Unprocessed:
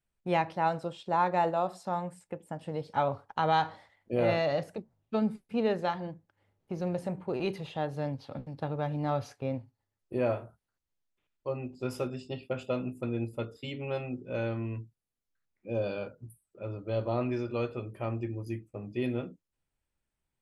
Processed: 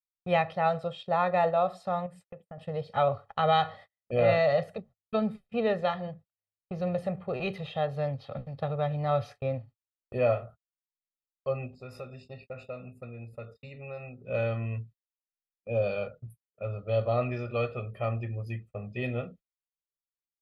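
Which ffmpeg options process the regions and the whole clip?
ffmpeg -i in.wav -filter_complex "[0:a]asettb=1/sr,asplit=3[link_01][link_02][link_03];[link_01]atrim=end=2.064[link_04];[link_02]atrim=start=2.06:end=2.58,asetpts=PTS-STARTPTS,afade=type=in:duration=0.004:curve=qsin,afade=type=out:start_time=0.516:duration=0.004:curve=qsin,acompressor=threshold=-48dB:ratio=2.5:attack=3.2:release=140:knee=1:detection=peak,equalizer=frequency=270:width_type=o:width=2:gain=3.5[link_05];[link_03]atrim=start=2.576[link_06];[link_04][link_05]acrossfade=duration=0.004:curve1=hsin:curve2=qsin[link_07];[link_07][link_06]acrossfade=duration=0.004:curve1=qsin:curve2=hsin,asettb=1/sr,asplit=3[link_08][link_09][link_10];[link_08]atrim=end=11.744[link_11];[link_09]atrim=start=11.74:end=14.24,asetpts=PTS-STARTPTS,afade=type=in:duration=0.004:curve=qsin,afade=type=out:start_time=2.496:duration=0.004:curve=qsin,acompressor=threshold=-47dB:ratio=2:attack=3.2:release=140:knee=1:detection=peak,asuperstop=centerf=3200:order=20:qfactor=5.2[link_12];[link_10]atrim=start=14.236[link_13];[link_11][link_12]acrossfade=duration=0.004:curve1=hsin:curve2=qsin[link_14];[link_14][link_13]acrossfade=duration=0.004:curve1=qsin:curve2=hsin,agate=range=-35dB:threshold=-50dB:ratio=16:detection=peak,highshelf=frequency=4800:width_type=q:width=1.5:gain=-8,aecho=1:1:1.6:0.83" out.wav

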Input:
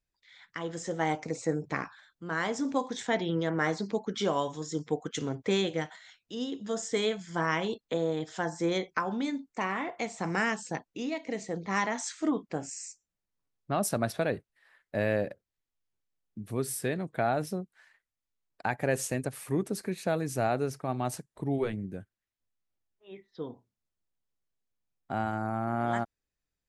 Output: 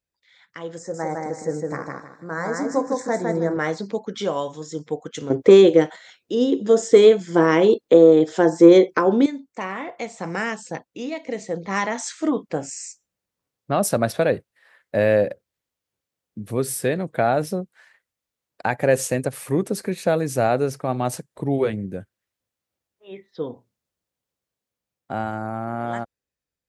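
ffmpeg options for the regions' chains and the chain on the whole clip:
ffmpeg -i in.wav -filter_complex "[0:a]asettb=1/sr,asplit=3[link_01][link_02][link_03];[link_01]atrim=end=0.784[link_04];[link_02]atrim=start=0.78:end=3.57,asetpts=PTS-STARTPTS,afade=type=in:duration=0.004:curve=qsin,afade=type=out:start_time=2.786:duration=0.004:curve=qsin,asuperstop=centerf=3000:order=4:qfactor=0.99,aecho=1:1:157|314|471|628:0.708|0.198|0.0555|0.0155,atrim=end_sample=123039[link_05];[link_03]atrim=start=3.566[link_06];[link_04][link_05]acrossfade=duration=0.004:curve1=hsin:curve2=qsin[link_07];[link_07][link_06]acrossfade=duration=0.004:curve1=qsin:curve2=hsin,asettb=1/sr,asplit=3[link_08][link_09][link_10];[link_08]atrim=end=5.304[link_11];[link_09]atrim=start=5.3:end=9.26,asetpts=PTS-STARTPTS,afade=type=in:duration=0.004:curve=qsin,afade=type=out:start_time=3.956:duration=0.004:curve=qsin,equalizer=frequency=360:width_type=o:width=1.1:gain=13.5,acontrast=34[link_12];[link_10]atrim=start=9.256[link_13];[link_11][link_12]acrossfade=duration=0.004:curve1=hsin:curve2=qsin[link_14];[link_14][link_13]acrossfade=duration=0.004:curve1=qsin:curve2=hsin,highpass=61,equalizer=frequency=520:width=3.9:gain=6,dynaudnorm=framelen=540:gausssize=9:maxgain=7.5dB" out.wav

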